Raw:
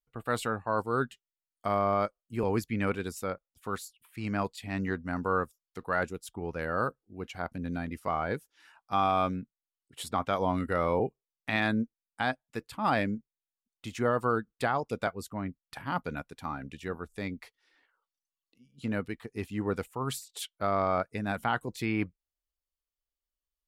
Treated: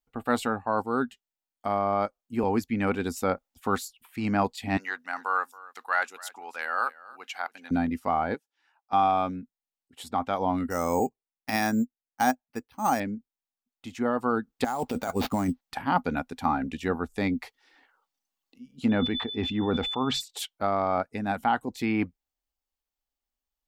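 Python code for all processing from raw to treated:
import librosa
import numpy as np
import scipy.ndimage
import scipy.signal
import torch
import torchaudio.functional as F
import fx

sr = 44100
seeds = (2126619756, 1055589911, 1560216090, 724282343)

y = fx.chain(x, sr, fx.highpass(hz=1300.0, slope=12),
    fx.echo_single(ms=277, db=-20.0), at=(4.77, 7.71))
y = fx.chain(y, sr, fx.highpass(hz=330.0, slope=12),
    fx.peak_eq(hz=12000.0, db=-10.5, octaves=1.1),
    fx.upward_expand(threshold_db=-60.0, expansion=1.5), at=(8.34, 8.93))
y = fx.chain(y, sr, fx.resample_bad(factor=6, down='filtered', up='hold'),
    fx.upward_expand(threshold_db=-46.0, expansion=1.5), at=(10.7, 13.0))
y = fx.chain(y, sr, fx.over_compress(threshold_db=-37.0, ratio=-1.0),
    fx.sample_hold(seeds[0], rate_hz=8200.0, jitter_pct=0), at=(14.64, 15.61))
y = fx.dmg_tone(y, sr, hz=3500.0, level_db=-45.0, at=(18.89, 20.2), fade=0.02)
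y = fx.air_absorb(y, sr, metres=200.0, at=(18.89, 20.2), fade=0.02)
y = fx.sustainer(y, sr, db_per_s=36.0, at=(18.89, 20.2), fade=0.02)
y = fx.graphic_eq_31(y, sr, hz=(125, 250, 800, 10000), db=(-9, 9, 9, -5))
y = fx.rider(y, sr, range_db=5, speed_s=0.5)
y = F.gain(torch.from_numpy(y), 2.0).numpy()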